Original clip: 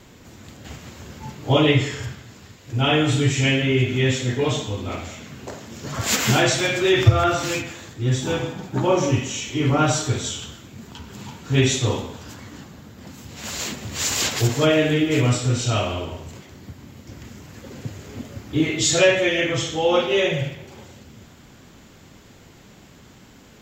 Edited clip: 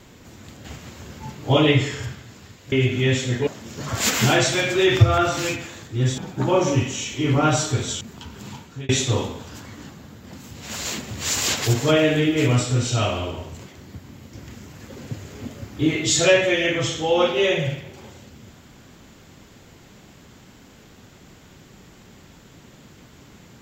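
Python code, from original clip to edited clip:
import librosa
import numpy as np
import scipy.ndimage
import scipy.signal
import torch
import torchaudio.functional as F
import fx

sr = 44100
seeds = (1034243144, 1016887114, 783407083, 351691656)

y = fx.edit(x, sr, fx.cut(start_s=2.72, length_s=0.97),
    fx.cut(start_s=4.44, length_s=1.09),
    fx.cut(start_s=8.24, length_s=0.3),
    fx.cut(start_s=10.37, length_s=0.38),
    fx.fade_out_span(start_s=11.26, length_s=0.37), tone=tone)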